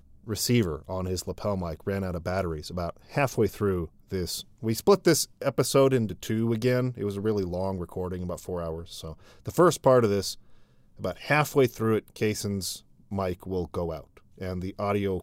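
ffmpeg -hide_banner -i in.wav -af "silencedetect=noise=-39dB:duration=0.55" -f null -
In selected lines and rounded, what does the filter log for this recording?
silence_start: 10.34
silence_end: 11.00 | silence_duration: 0.66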